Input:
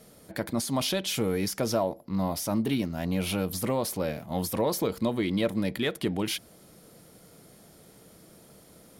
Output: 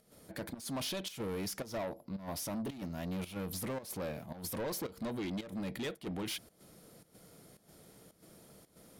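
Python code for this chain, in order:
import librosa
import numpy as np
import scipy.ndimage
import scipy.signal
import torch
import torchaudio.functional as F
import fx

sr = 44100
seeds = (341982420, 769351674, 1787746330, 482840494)

y = 10.0 ** (-29.5 / 20.0) * np.tanh(x / 10.0 ** (-29.5 / 20.0))
y = fx.volume_shaper(y, sr, bpm=111, per_beat=1, depth_db=-13, release_ms=115.0, shape='slow start')
y = F.gain(torch.from_numpy(y), -4.5).numpy()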